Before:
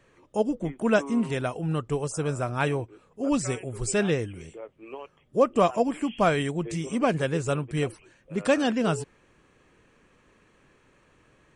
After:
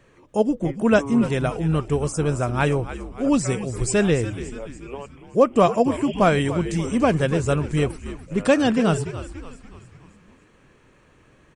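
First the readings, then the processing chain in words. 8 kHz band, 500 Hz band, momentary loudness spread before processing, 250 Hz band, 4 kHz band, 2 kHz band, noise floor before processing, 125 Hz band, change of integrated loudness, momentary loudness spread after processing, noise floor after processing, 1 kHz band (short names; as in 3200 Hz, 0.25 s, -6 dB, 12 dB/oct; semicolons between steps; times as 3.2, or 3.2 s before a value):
+4.0 dB, +5.0 dB, 14 LU, +6.0 dB, +4.0 dB, +4.0 dB, -63 dBFS, +7.0 dB, +5.5 dB, 15 LU, -56 dBFS, +4.5 dB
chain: low shelf 370 Hz +3.5 dB; on a send: frequency-shifting echo 0.287 s, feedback 51%, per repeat -85 Hz, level -13 dB; on the sum: gain +3.5 dB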